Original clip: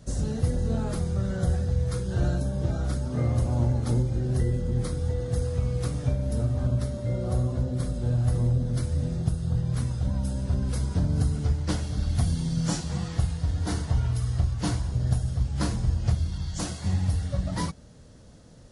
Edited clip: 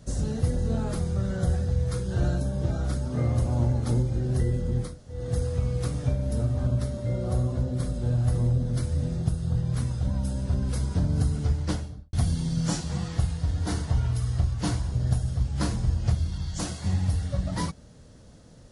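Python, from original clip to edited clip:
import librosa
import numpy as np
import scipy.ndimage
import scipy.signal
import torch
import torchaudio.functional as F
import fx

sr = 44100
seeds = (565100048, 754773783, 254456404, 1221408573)

y = fx.studio_fade_out(x, sr, start_s=11.63, length_s=0.5)
y = fx.edit(y, sr, fx.room_tone_fill(start_s=4.88, length_s=0.29, crossfade_s=0.24), tone=tone)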